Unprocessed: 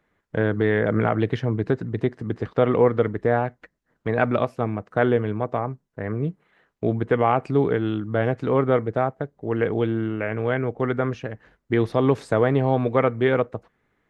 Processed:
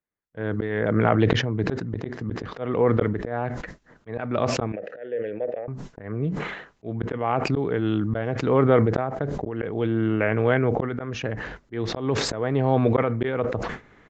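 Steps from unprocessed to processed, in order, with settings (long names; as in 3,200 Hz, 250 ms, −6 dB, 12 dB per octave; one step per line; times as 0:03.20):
downward expander −41 dBFS
volume swells 525 ms
0:04.72–0:05.68: formant filter e
downward compressor 1.5 to 1, threshold −37 dBFS, peak gain reduction 8 dB
downsampling to 16,000 Hz
level that may fall only so fast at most 40 dB per second
level +9 dB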